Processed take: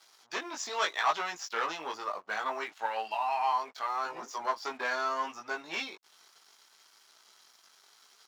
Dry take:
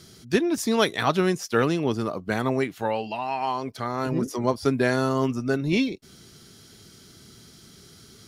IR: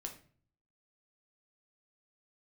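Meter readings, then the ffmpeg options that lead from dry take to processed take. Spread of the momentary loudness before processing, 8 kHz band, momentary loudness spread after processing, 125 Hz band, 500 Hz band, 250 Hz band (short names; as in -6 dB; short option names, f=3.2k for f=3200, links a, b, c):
7 LU, -6.0 dB, 8 LU, under -35 dB, -14.0 dB, -25.5 dB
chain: -af "aresample=16000,asoftclip=type=tanh:threshold=-18dB,aresample=44100,flanger=delay=17.5:depth=2.5:speed=0.71,aeval=exprs='sgn(val(0))*max(abs(val(0))-0.00178,0)':c=same,highpass=f=920:t=q:w=1.7"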